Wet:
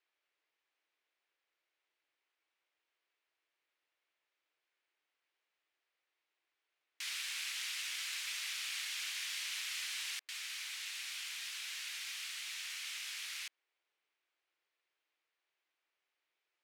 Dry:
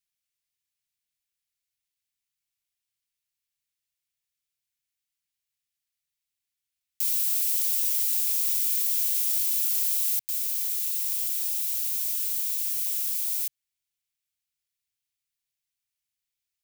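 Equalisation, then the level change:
linear-phase brick-wall high-pass 290 Hz
low-pass filter 2,000 Hz 12 dB per octave
+12.5 dB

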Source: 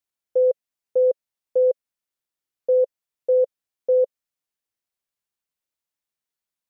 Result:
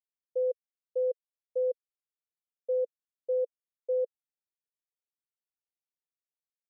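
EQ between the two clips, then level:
low-pass with resonance 480 Hz, resonance Q 4.9
first difference
0.0 dB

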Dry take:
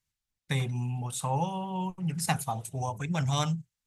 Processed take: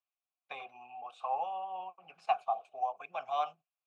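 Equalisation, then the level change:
formant filter a
band-pass filter 570–3,800 Hz
+7.5 dB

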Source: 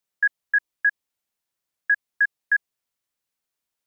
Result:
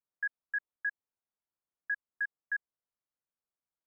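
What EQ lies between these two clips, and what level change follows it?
low-pass filter 1,500 Hz 24 dB per octave
−8.5 dB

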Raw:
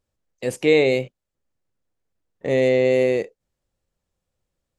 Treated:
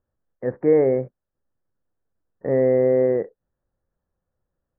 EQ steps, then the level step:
Butterworth low-pass 1,800 Hz 72 dB per octave
0.0 dB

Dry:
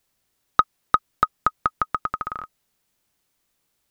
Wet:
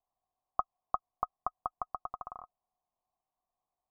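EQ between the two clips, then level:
formant resonators in series a
spectral tilt −2.5 dB per octave
+2.5 dB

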